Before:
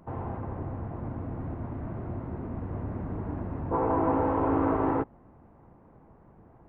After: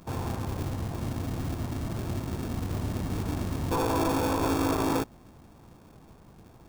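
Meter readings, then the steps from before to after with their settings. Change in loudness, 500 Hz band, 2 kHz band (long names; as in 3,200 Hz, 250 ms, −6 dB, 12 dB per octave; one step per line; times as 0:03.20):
+0.5 dB, −1.0 dB, +5.5 dB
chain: in parallel at −6 dB: sample-rate reduction 1,000 Hz, jitter 0%
on the sum: brickwall limiter −18 dBFS, peak gain reduction 7 dB
high-shelf EQ 2,500 Hz +8.5 dB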